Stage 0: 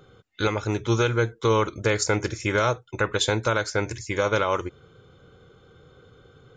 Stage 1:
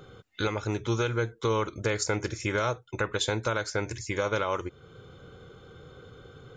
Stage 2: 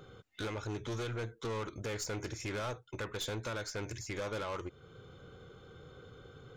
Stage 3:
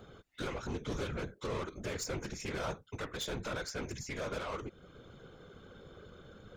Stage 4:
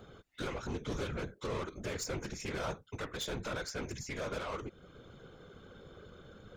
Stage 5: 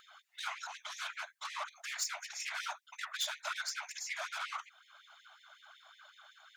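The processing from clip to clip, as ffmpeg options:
-af "acompressor=threshold=0.00631:ratio=1.5,volume=1.5"
-af "aeval=exprs='(tanh(31.6*val(0)+0.2)-tanh(0.2))/31.6':c=same,volume=0.631"
-af "afftfilt=real='hypot(re,im)*cos(2*PI*random(0))':imag='hypot(re,im)*sin(2*PI*random(1))':win_size=512:overlap=0.75,volume=2"
-af anull
-af "afftfilt=real='re*gte(b*sr/1024,590*pow(1800/590,0.5+0.5*sin(2*PI*5.4*pts/sr)))':imag='im*gte(b*sr/1024,590*pow(1800/590,0.5+0.5*sin(2*PI*5.4*pts/sr)))':win_size=1024:overlap=0.75,volume=1.68"

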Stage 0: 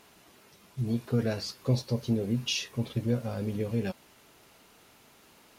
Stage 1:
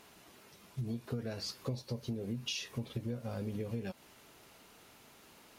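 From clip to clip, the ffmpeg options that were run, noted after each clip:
-af "acompressor=threshold=0.0224:ratio=10,volume=0.891"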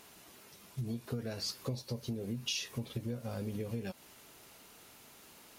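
-af "highshelf=f=5500:g=7"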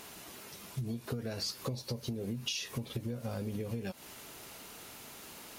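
-af "acompressor=threshold=0.00708:ratio=3,volume=2.37"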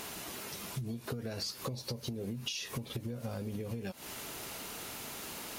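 -af "acompressor=threshold=0.00631:ratio=3,volume=2.11"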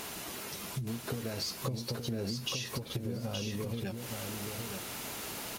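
-af "aecho=1:1:871|1742|2613:0.562|0.101|0.0182,volume=1.19"

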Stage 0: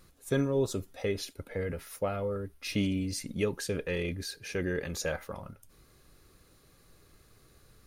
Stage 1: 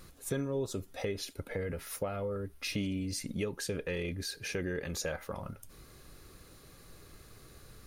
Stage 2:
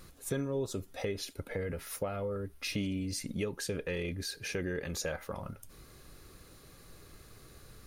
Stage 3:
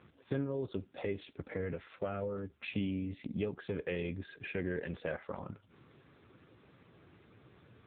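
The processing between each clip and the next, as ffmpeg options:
-af "acompressor=threshold=0.00708:ratio=2.5,volume=2"
-af anull
-ar 8000 -c:a libopencore_amrnb -b:a 5900

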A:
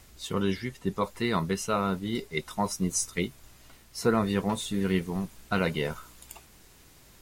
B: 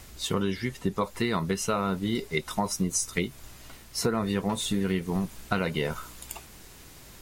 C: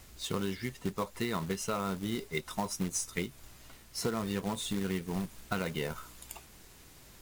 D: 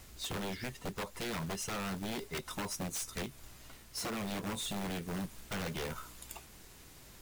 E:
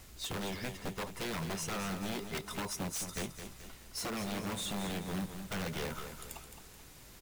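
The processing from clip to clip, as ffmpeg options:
-af "acompressor=threshold=0.0316:ratio=6,volume=2.11"
-af "acrusher=bits=3:mode=log:mix=0:aa=0.000001,volume=0.473"
-af "aeval=exprs='0.0237*(abs(mod(val(0)/0.0237+3,4)-2)-1)':c=same"
-af "aecho=1:1:215|430|645|860|1075:0.355|0.149|0.0626|0.0263|0.011"

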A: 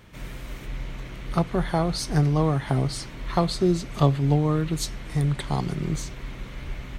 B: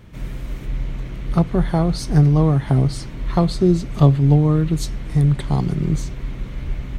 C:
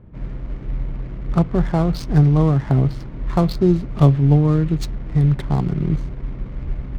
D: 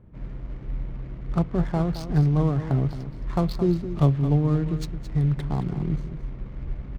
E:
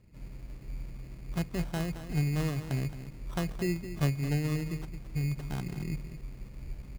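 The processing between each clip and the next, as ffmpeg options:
-af "lowshelf=f=420:g=10,volume=0.891"
-af "adynamicsmooth=sensitivity=6.5:basefreq=670"
-af "aecho=1:1:219:0.266,volume=0.473"
-af "acrusher=samples=19:mix=1:aa=0.000001,volume=0.355"

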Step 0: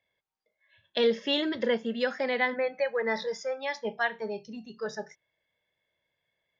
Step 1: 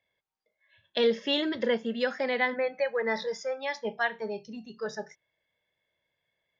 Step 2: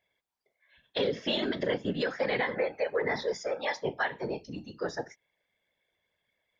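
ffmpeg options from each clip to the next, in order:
-af anull
-af "afftfilt=real='hypot(re,im)*cos(2*PI*random(0))':imag='hypot(re,im)*sin(2*PI*random(1))':win_size=512:overlap=0.75,acontrast=78,alimiter=limit=0.112:level=0:latency=1:release=125"

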